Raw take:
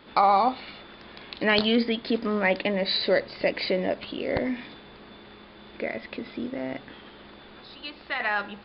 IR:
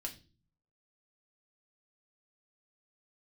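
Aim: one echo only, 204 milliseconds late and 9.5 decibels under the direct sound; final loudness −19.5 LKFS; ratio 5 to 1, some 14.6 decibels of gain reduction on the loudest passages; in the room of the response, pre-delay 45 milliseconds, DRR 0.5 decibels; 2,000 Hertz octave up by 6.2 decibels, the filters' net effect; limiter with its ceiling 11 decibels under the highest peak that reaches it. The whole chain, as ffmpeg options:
-filter_complex "[0:a]equalizer=frequency=2000:width_type=o:gain=7,acompressor=threshold=-31dB:ratio=5,alimiter=level_in=1.5dB:limit=-24dB:level=0:latency=1,volume=-1.5dB,aecho=1:1:204:0.335,asplit=2[link_01][link_02];[1:a]atrim=start_sample=2205,adelay=45[link_03];[link_02][link_03]afir=irnorm=-1:irlink=0,volume=1.5dB[link_04];[link_01][link_04]amix=inputs=2:normalize=0,volume=14.5dB"

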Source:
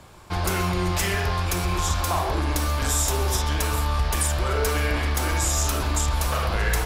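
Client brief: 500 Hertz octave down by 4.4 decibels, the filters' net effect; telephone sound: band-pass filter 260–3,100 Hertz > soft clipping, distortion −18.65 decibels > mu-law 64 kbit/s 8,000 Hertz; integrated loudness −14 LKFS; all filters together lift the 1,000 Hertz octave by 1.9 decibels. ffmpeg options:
ffmpeg -i in.wav -af "highpass=260,lowpass=3100,equalizer=frequency=500:width_type=o:gain=-6.5,equalizer=frequency=1000:width_type=o:gain=4,asoftclip=threshold=-21dB,volume=15.5dB" -ar 8000 -c:a pcm_mulaw out.wav

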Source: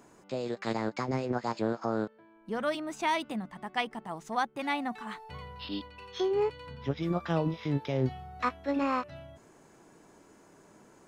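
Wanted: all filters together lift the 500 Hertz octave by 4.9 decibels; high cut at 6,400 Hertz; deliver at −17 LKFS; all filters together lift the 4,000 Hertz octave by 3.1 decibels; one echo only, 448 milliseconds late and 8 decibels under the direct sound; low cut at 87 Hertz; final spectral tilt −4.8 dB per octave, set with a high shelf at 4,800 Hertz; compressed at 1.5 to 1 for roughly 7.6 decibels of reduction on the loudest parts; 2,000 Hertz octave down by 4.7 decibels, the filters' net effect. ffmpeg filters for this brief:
ffmpeg -i in.wav -af "highpass=87,lowpass=6400,equalizer=frequency=500:width_type=o:gain=6.5,equalizer=frequency=2000:width_type=o:gain=-8.5,equalizer=frequency=4000:width_type=o:gain=5,highshelf=frequency=4800:gain=5.5,acompressor=threshold=-43dB:ratio=1.5,aecho=1:1:448:0.398,volume=20dB" out.wav

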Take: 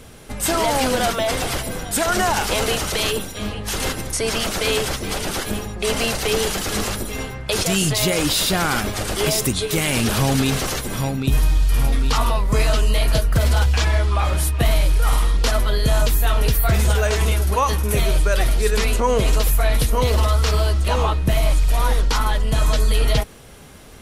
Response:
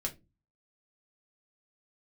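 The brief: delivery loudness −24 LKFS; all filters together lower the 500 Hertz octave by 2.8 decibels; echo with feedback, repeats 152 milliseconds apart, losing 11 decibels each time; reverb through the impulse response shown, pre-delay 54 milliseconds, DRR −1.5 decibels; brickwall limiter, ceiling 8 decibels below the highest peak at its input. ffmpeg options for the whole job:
-filter_complex "[0:a]equalizer=frequency=500:width_type=o:gain=-3.5,alimiter=limit=-15dB:level=0:latency=1,aecho=1:1:152|304|456:0.282|0.0789|0.0221,asplit=2[link_01][link_02];[1:a]atrim=start_sample=2205,adelay=54[link_03];[link_02][link_03]afir=irnorm=-1:irlink=0,volume=0dB[link_04];[link_01][link_04]amix=inputs=2:normalize=0,volume=-5.5dB"

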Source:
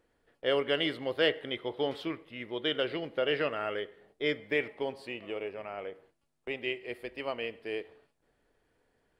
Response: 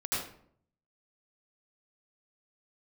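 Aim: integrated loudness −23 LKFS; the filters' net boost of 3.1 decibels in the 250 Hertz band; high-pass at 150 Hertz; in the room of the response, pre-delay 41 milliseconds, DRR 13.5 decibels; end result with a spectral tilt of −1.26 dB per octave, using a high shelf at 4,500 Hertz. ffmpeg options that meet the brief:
-filter_complex "[0:a]highpass=150,equalizer=frequency=250:width_type=o:gain=4.5,highshelf=frequency=4500:gain=7,asplit=2[link_01][link_02];[1:a]atrim=start_sample=2205,adelay=41[link_03];[link_02][link_03]afir=irnorm=-1:irlink=0,volume=-20dB[link_04];[link_01][link_04]amix=inputs=2:normalize=0,volume=9dB"

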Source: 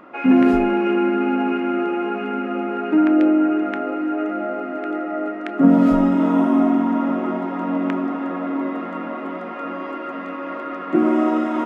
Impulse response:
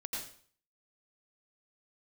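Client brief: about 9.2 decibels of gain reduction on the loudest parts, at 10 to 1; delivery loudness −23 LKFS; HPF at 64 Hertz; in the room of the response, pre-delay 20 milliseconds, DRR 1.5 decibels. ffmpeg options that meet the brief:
-filter_complex "[0:a]highpass=64,acompressor=threshold=-17dB:ratio=10,asplit=2[link_01][link_02];[1:a]atrim=start_sample=2205,adelay=20[link_03];[link_02][link_03]afir=irnorm=-1:irlink=0,volume=-2dB[link_04];[link_01][link_04]amix=inputs=2:normalize=0,volume=-3.5dB"

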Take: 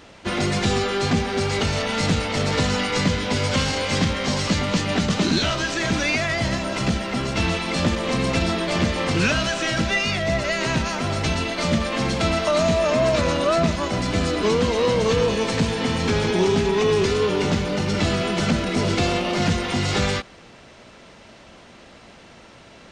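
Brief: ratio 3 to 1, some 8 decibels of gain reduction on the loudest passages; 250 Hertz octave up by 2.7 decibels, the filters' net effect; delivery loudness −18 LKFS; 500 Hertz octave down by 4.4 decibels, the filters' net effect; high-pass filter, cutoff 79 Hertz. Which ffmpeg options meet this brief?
ffmpeg -i in.wav -af "highpass=79,equalizer=frequency=250:width_type=o:gain=5.5,equalizer=frequency=500:width_type=o:gain=-7.5,acompressor=threshold=-25dB:ratio=3,volume=9dB" out.wav

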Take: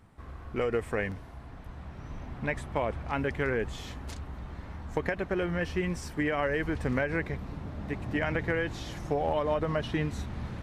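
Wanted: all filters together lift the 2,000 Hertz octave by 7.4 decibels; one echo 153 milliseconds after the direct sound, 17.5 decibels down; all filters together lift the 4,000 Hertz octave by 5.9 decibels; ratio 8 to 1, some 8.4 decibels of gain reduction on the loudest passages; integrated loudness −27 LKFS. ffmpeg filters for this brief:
ffmpeg -i in.wav -af "equalizer=frequency=2000:width_type=o:gain=8,equalizer=frequency=4000:width_type=o:gain=4.5,acompressor=threshold=-30dB:ratio=8,aecho=1:1:153:0.133,volume=9dB" out.wav

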